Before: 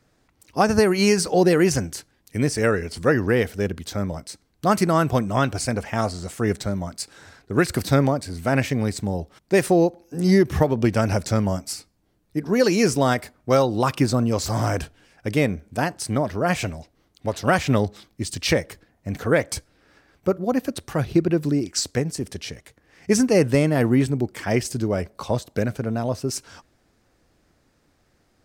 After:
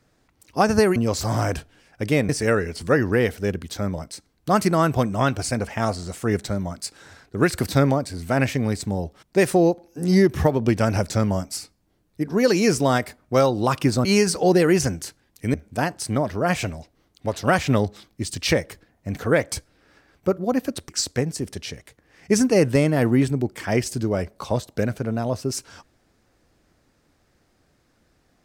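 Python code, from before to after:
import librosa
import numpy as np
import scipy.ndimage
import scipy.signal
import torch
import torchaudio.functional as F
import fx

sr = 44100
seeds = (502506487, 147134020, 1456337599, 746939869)

y = fx.edit(x, sr, fx.swap(start_s=0.96, length_s=1.49, other_s=14.21, other_length_s=1.33),
    fx.cut(start_s=20.89, length_s=0.79), tone=tone)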